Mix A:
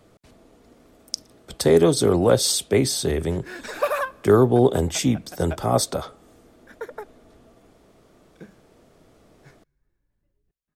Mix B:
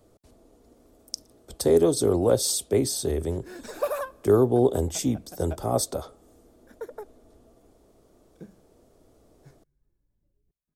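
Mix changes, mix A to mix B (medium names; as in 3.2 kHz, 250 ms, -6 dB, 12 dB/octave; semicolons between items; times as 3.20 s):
speech: add peaking EQ 160 Hz -8.5 dB 1.1 oct; master: add peaking EQ 2.1 kHz -12.5 dB 2.4 oct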